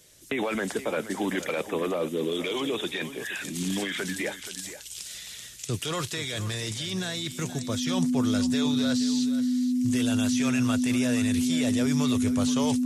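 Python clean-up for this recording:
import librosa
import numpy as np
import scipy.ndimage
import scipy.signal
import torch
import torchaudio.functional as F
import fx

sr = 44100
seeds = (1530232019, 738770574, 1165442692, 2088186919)

y = fx.notch(x, sr, hz=250.0, q=30.0)
y = fx.fix_echo_inverse(y, sr, delay_ms=475, level_db=-13.0)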